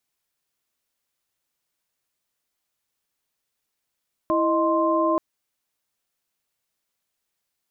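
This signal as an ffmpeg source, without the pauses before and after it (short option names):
-f lavfi -i "aevalsrc='0.075*(sin(2*PI*329.63*t)+sin(2*PI*622.25*t)+sin(2*PI*1046.5*t))':d=0.88:s=44100"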